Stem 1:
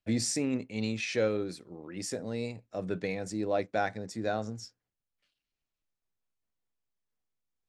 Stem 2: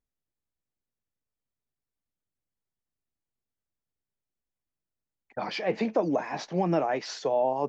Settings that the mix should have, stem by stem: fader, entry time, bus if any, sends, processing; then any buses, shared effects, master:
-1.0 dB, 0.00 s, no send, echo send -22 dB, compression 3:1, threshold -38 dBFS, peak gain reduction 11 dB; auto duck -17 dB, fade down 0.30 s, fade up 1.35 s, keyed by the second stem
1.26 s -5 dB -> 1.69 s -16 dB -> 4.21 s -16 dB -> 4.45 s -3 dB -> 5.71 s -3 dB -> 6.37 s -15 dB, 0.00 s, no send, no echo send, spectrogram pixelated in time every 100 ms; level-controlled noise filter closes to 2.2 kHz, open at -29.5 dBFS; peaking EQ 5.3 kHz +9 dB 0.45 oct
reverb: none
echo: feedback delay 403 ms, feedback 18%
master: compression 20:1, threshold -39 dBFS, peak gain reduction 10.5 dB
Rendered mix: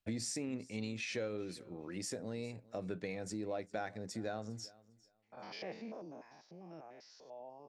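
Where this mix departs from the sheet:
stem 2 -5.0 dB -> -14.5 dB; master: missing compression 20:1, threshold -39 dBFS, peak gain reduction 10.5 dB

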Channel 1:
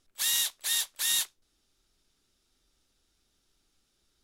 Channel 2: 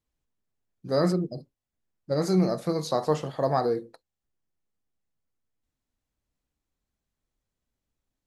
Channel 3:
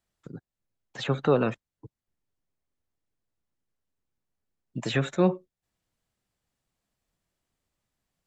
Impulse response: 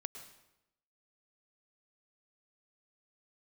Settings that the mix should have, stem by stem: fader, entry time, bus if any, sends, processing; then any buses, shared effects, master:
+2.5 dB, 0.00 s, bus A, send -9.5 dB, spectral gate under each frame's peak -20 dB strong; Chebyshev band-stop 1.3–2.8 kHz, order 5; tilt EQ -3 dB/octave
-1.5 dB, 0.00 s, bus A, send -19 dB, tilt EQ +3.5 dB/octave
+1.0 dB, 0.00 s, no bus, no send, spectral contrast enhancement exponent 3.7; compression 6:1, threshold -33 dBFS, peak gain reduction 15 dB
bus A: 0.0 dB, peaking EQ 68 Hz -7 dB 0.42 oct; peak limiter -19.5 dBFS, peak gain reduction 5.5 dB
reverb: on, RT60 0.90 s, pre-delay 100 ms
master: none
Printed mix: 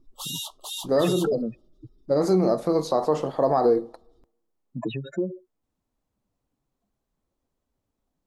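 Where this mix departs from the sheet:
stem 1: send off; stem 2: missing tilt EQ +3.5 dB/octave; master: extra high-order bell 520 Hz +8.5 dB 2.7 oct

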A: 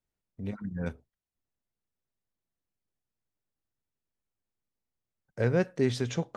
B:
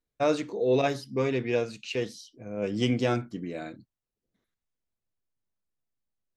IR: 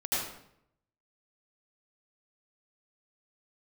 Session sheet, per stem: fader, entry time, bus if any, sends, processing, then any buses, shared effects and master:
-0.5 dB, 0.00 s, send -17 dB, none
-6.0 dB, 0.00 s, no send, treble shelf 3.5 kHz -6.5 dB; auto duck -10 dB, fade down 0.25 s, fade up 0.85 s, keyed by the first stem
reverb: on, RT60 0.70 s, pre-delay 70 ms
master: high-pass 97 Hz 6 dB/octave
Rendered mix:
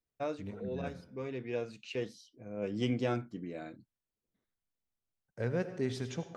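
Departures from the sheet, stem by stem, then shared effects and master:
stem A -0.5 dB -> -8.5 dB; master: missing high-pass 97 Hz 6 dB/octave

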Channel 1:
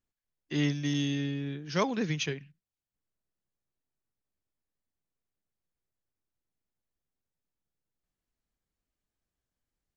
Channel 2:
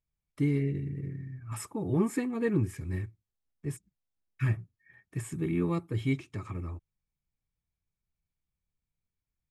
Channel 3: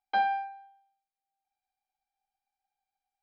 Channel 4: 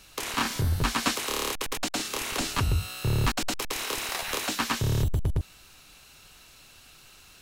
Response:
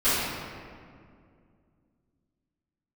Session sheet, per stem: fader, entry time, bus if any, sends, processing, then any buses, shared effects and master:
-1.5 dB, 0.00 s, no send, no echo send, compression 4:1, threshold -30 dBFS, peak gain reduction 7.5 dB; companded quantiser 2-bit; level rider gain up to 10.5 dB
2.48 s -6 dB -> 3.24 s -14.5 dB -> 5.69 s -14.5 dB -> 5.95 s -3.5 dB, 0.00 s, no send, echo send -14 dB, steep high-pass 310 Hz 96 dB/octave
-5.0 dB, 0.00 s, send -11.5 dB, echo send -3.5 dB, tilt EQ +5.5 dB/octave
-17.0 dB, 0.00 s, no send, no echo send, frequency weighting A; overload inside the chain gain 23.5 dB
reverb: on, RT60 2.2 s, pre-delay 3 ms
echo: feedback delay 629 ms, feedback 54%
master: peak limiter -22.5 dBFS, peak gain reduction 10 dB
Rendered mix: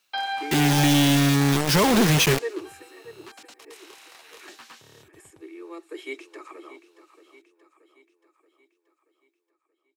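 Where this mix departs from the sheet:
stem 2 -6.0 dB -> +0.5 dB; master: missing peak limiter -22.5 dBFS, peak gain reduction 10 dB

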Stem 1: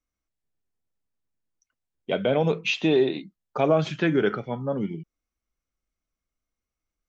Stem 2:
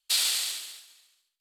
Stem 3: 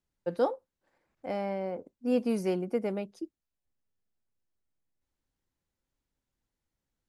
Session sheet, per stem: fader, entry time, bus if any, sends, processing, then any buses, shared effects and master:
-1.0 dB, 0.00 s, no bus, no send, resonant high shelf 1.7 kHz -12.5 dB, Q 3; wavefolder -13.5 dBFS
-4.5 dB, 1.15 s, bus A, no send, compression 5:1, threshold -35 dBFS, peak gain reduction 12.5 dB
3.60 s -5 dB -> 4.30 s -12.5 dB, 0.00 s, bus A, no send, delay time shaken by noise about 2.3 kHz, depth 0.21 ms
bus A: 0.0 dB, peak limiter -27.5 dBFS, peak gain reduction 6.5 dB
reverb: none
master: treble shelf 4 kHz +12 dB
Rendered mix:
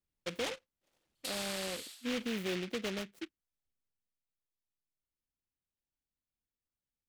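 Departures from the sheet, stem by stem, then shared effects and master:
stem 1: muted; master: missing treble shelf 4 kHz +12 dB

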